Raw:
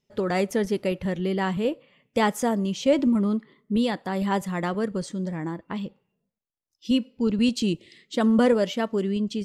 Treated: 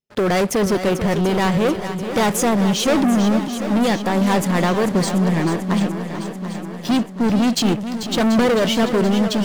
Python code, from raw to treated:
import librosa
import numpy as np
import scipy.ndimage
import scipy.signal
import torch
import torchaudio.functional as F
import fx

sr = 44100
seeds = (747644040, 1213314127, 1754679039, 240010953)

p1 = fx.leveller(x, sr, passes=5)
p2 = p1 + fx.echo_swing(p1, sr, ms=736, ratio=1.5, feedback_pct=57, wet_db=-10, dry=0)
y = p2 * librosa.db_to_amplitude(-4.5)